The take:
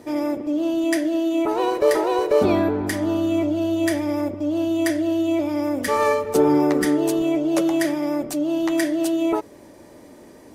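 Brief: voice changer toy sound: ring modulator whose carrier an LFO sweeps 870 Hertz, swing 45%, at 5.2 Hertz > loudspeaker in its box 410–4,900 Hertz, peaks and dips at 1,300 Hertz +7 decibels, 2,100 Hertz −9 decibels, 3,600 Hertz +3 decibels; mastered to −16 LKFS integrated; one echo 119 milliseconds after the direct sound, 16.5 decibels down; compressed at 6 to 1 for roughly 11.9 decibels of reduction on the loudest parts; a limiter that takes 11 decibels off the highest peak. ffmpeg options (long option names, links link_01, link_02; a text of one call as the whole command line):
ffmpeg -i in.wav -af "acompressor=threshold=-26dB:ratio=6,alimiter=level_in=2dB:limit=-24dB:level=0:latency=1,volume=-2dB,aecho=1:1:119:0.15,aeval=exprs='val(0)*sin(2*PI*870*n/s+870*0.45/5.2*sin(2*PI*5.2*n/s))':channel_layout=same,highpass=410,equalizer=frequency=1300:width_type=q:width=4:gain=7,equalizer=frequency=2100:width_type=q:width=4:gain=-9,equalizer=frequency=3600:width_type=q:width=4:gain=3,lowpass=frequency=4900:width=0.5412,lowpass=frequency=4900:width=1.3066,volume=18.5dB" out.wav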